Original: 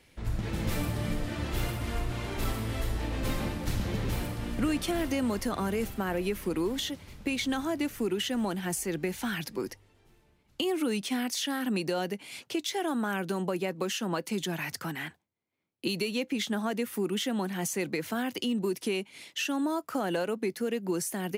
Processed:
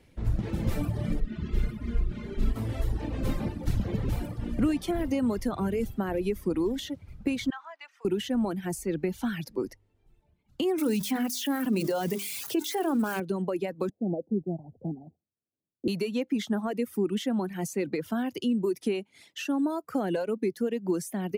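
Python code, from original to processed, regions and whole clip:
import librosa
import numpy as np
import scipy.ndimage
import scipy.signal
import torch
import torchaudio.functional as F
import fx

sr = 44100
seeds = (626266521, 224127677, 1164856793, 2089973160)

y = fx.chain(x, sr, fx.lowpass(hz=2300.0, slope=6),
    fx.peak_eq(hz=750.0, db=-14.5, octaves=1.1),
    fx.comb(ms=4.8, depth=0.7), at=(1.2, 2.56))
y = fx.chain(y, sr, fx.highpass(hz=960.0, slope=24),
    fx.air_absorb(metres=150.0), at=(7.5, 8.05))
y = fx.chain(y, sr, fx.crossing_spikes(level_db=-27.0),
    fx.hum_notches(base_hz=50, count=8),
    fx.env_flatten(amount_pct=70), at=(10.78, 13.2))
y = fx.chain(y, sr, fx.steep_lowpass(hz=760.0, slope=72),
    fx.quant_float(bits=6), at=(13.89, 15.88))
y = fx.dereverb_blind(y, sr, rt60_s=1.2)
y = fx.tilt_shelf(y, sr, db=5.5, hz=800.0)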